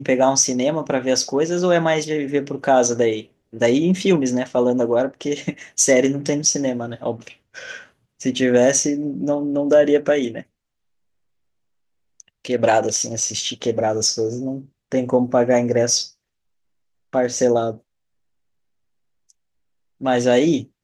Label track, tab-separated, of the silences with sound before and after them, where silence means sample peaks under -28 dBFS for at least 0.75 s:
10.410000	12.200000	silence
16.050000	17.130000	silence
17.730000	20.020000	silence